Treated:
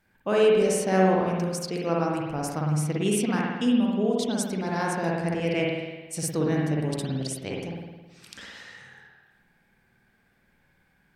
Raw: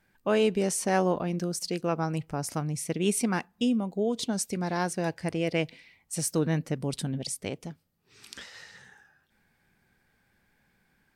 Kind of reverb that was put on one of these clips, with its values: spring tank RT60 1.2 s, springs 53 ms, chirp 65 ms, DRR -2.5 dB; gain -1 dB

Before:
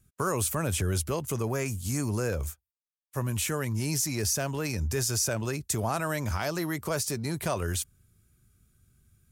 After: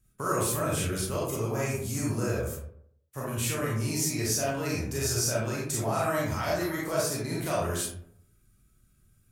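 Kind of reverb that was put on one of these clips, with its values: digital reverb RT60 0.69 s, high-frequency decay 0.45×, pre-delay 0 ms, DRR -6.5 dB; gain -6 dB

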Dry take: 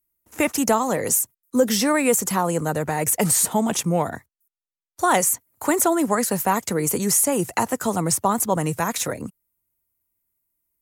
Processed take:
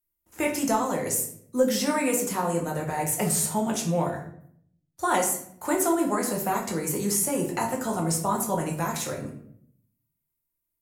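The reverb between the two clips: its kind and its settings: shoebox room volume 110 m³, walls mixed, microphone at 0.89 m; gain -8.5 dB

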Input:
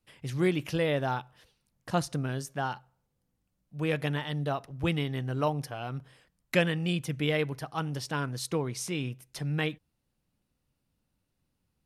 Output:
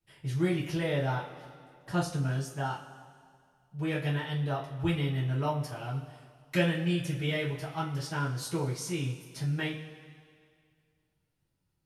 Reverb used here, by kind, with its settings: two-slope reverb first 0.27 s, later 2.1 s, from -18 dB, DRR -7.5 dB; gain -10 dB

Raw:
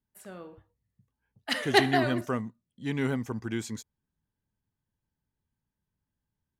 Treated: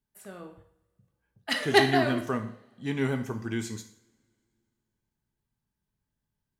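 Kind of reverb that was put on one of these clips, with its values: two-slope reverb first 0.55 s, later 2.5 s, from -27 dB, DRR 6 dB

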